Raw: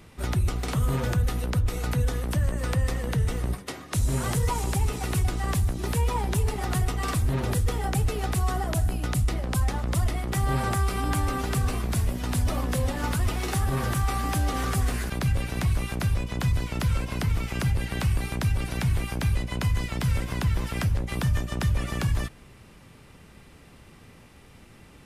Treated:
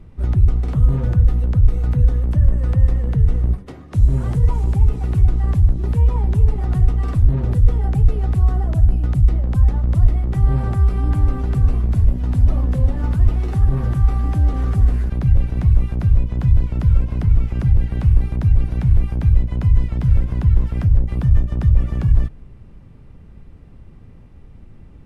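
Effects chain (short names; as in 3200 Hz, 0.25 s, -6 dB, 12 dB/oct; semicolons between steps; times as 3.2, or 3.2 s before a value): tilt -4 dB/oct; gain -4.5 dB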